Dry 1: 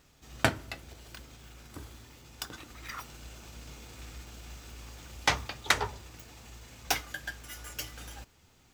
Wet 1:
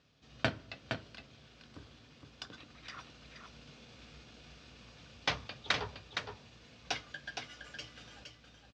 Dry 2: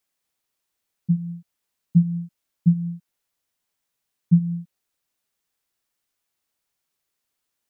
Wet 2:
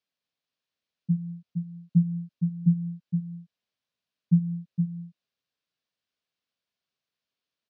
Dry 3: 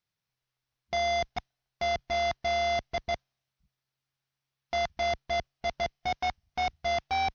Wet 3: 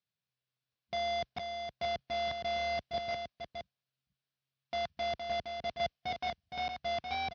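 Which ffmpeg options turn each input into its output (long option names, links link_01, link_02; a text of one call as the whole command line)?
ffmpeg -i in.wav -af "highpass=100,equalizer=frequency=350:width_type=q:width=4:gain=-7,equalizer=frequency=860:width_type=q:width=4:gain=-8,equalizer=frequency=1300:width_type=q:width=4:gain=-4,equalizer=frequency=2000:width_type=q:width=4:gain=-5,lowpass=frequency=4900:width=0.5412,lowpass=frequency=4900:width=1.3066,aecho=1:1:465:0.501,volume=-3.5dB" out.wav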